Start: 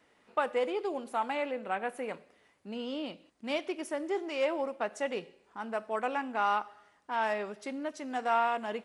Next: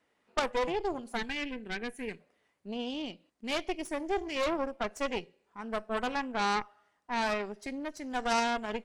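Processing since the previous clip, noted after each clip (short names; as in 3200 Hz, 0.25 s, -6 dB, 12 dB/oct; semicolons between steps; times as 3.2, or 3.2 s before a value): spectral noise reduction 8 dB; added harmonics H 3 -9 dB, 5 -16 dB, 8 -18 dB, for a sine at -16 dBFS; spectral gain 1.17–2.2, 490–1500 Hz -12 dB; gain +3 dB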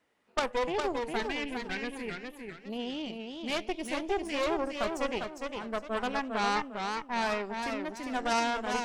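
warbling echo 0.404 s, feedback 32%, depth 133 cents, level -5 dB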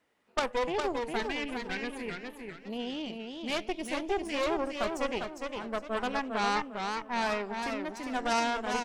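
outdoor echo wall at 190 m, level -20 dB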